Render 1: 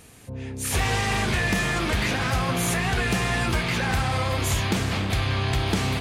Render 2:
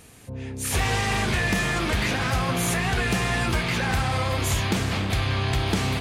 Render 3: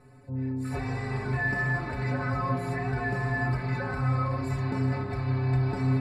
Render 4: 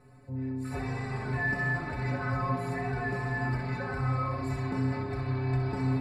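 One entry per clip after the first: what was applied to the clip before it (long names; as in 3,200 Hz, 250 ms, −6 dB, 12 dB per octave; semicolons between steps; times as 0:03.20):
no processing that can be heard
in parallel at −2 dB: brickwall limiter −21 dBFS, peak gain reduction 7 dB; on the sum: moving average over 14 samples; stiff-string resonator 130 Hz, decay 0.24 s, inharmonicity 0.008; level +2.5 dB
flutter between parallel walls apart 11 metres, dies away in 0.45 s; level −2.5 dB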